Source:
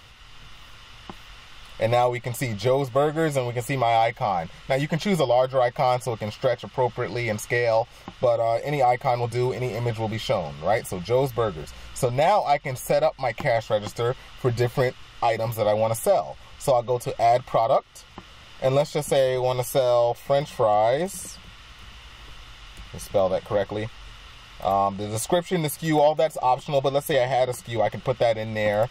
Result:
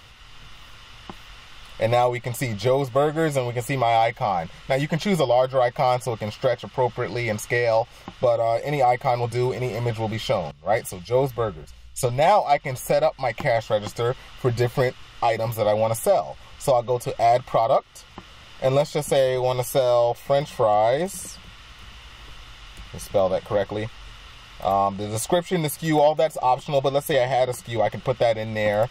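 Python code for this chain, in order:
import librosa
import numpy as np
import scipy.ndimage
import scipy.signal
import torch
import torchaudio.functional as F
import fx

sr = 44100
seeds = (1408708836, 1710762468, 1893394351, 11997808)

y = fx.band_widen(x, sr, depth_pct=100, at=(10.51, 12.58))
y = y * 10.0 ** (1.0 / 20.0)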